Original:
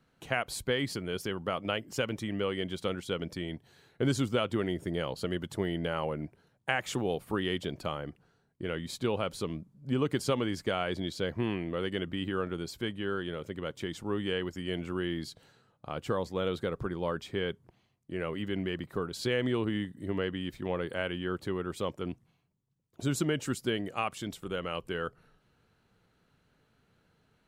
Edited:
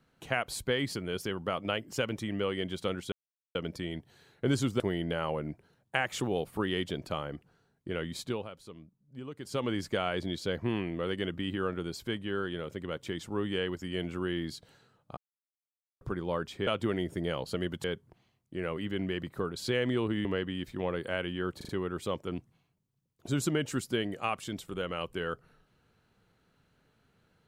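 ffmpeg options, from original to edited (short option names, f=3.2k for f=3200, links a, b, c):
-filter_complex "[0:a]asplit=13[a][b][c][d][e][f][g][h][i][j][k][l][m];[a]atrim=end=3.12,asetpts=PTS-STARTPTS,afade=t=out:st=3.116:d=0.004:c=hsin,apad=pad_dur=0.43[n];[b]atrim=start=3.12:end=4.372,asetpts=PTS-STARTPTS,afade=t=in:d=0.004:c=hsin[o];[c]atrim=start=5.538:end=9.24,asetpts=PTS-STARTPTS,afade=t=out:st=3.392:d=0.31:silence=0.211349[p];[d]atrim=start=9.24:end=10.15,asetpts=PTS-STARTPTS,volume=-13.5dB[q];[e]atrim=start=10.15:end=15.91,asetpts=PTS-STARTPTS,afade=t=in:d=0.31:silence=0.211349,afade=t=out:st=5.756:d=0.004:c=hsin[r];[f]atrim=start=15.91:end=16.75,asetpts=PTS-STARTPTS,volume=0[s];[g]atrim=start=16.75:end=17.412,asetpts=PTS-STARTPTS,afade=t=in:d=0.004:c=hsin[t];[h]atrim=start=4.368:end=5.542[u];[i]atrim=start=17.408:end=19.822[v];[j]atrim=start=20.108:end=21.472[w];[k]atrim=start=21.428:end=21.472[x];[l]atrim=start=21.428:end=21.472[y];[m]atrim=start=21.428[z];[n][o]concat=n=2:v=0:a=1[aa];[p][q][r][s][t]concat=n=5:v=0:a=1[ab];[aa][ab]acrossfade=d=0.004:c1=hsin:c2=hsin[ac];[ac][u]acrossfade=d=0.004:c1=hsin:c2=hsin[ad];[ad][v]acrossfade=d=0.004:c1=hsin:c2=hsin[ae];[ae][w]acrossfade=d=0.004:c1=hsin:c2=hsin[af];[af][x]acrossfade=d=0.004:c1=hsin:c2=hsin[ag];[ag][y]acrossfade=d=0.004:c1=hsin:c2=hsin[ah];[ah][z]acrossfade=d=0.004:c1=hsin:c2=hsin"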